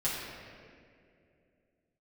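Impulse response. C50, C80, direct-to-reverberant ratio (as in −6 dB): −1.0 dB, 1.0 dB, −9.5 dB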